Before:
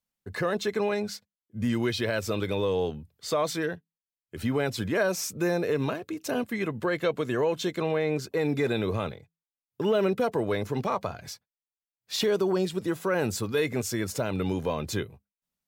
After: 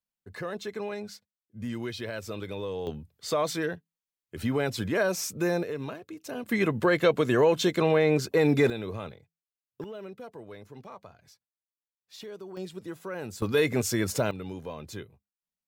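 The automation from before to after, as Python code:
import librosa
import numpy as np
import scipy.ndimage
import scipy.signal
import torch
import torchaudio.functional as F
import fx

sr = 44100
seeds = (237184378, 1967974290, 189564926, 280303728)

y = fx.gain(x, sr, db=fx.steps((0.0, -7.5), (2.87, -0.5), (5.63, -7.5), (6.46, 4.5), (8.7, -7.0), (9.84, -17.0), (12.57, -10.0), (13.42, 2.5), (14.31, -9.5)))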